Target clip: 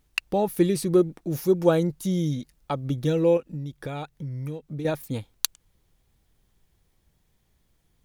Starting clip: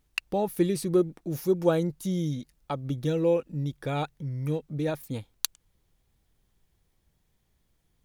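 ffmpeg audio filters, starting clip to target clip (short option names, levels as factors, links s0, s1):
-filter_complex "[0:a]asettb=1/sr,asplit=3[s0][s1][s2];[s0]atrim=end=3.374[s3];[s1]atrim=start=3.37:end=4.85,asetpts=PTS-STARTPTS,afade=t=in:d=0.004:c=qsin,afade=t=out:st=1.476:d=0.004:c=qsin,acompressor=threshold=0.02:ratio=6[s4];[s2]atrim=start=4.846[s5];[s3][s4]acrossfade=d=0.004:c1=hsin:c2=qsin[s6];[s6][s5]acrossfade=d=0.004:c1=qsin:c2=hsin,volume=1.5"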